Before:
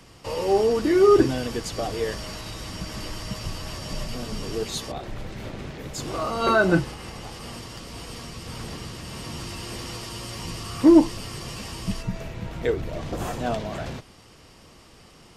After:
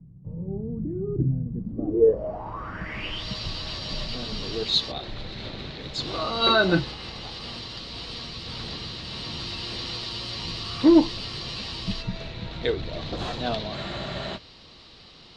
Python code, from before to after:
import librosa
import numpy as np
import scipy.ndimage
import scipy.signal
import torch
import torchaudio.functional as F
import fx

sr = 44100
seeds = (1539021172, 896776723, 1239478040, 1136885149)

y = fx.filter_sweep_lowpass(x, sr, from_hz=160.0, to_hz=4000.0, start_s=1.51, end_s=3.28, q=6.8)
y = fx.spec_freeze(y, sr, seeds[0], at_s=13.76, hold_s=0.61)
y = y * 10.0 ** (-2.0 / 20.0)